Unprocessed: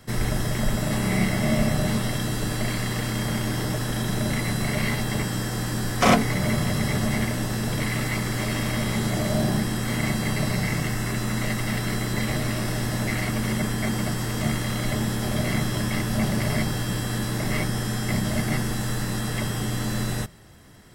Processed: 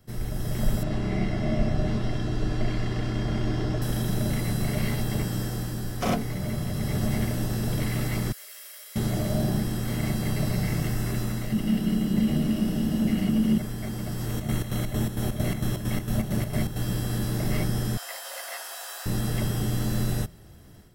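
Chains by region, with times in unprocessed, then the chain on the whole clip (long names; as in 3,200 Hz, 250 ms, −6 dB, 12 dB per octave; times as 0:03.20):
0:00.83–0:03.82: high-frequency loss of the air 130 metres + comb filter 2.9 ms, depth 31%
0:08.32–0:08.96: Chebyshev high-pass with heavy ripple 400 Hz, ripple 6 dB + first difference
0:11.52–0:13.58: mains-hum notches 60/120/180/240/300/360/420 Hz + hollow resonant body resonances 200/2,900 Hz, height 16 dB, ringing for 25 ms
0:14.26–0:16.82: notch filter 4,900 Hz, Q 7.5 + square-wave tremolo 4.4 Hz, depth 60%, duty 60%
0:17.97–0:19.06: Butterworth high-pass 710 Hz + frequency shifter −73 Hz
whole clip: parametric band 370 Hz +4 dB 2.8 octaves; automatic gain control gain up to 9.5 dB; octave-band graphic EQ 125/250/500/1,000/2,000/4,000/8,000 Hz −3/−7/−6/−9/−9/−5/−8 dB; level −5 dB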